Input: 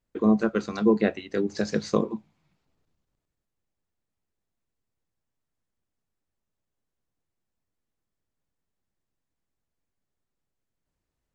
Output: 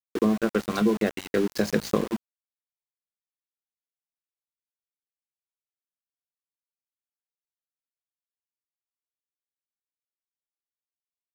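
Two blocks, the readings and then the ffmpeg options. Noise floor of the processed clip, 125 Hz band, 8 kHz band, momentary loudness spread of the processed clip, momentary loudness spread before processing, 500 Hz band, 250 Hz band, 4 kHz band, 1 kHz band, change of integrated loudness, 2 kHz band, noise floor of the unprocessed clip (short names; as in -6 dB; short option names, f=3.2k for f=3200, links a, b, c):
under -85 dBFS, 0.0 dB, n/a, 4 LU, 7 LU, -0.5 dB, -1.0 dB, +3.5 dB, +0.5 dB, -0.5 dB, +2.0 dB, -84 dBFS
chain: -af "acompressor=threshold=-24dB:ratio=10,aeval=exprs='val(0)*gte(abs(val(0)),0.015)':c=same,volume=5.5dB"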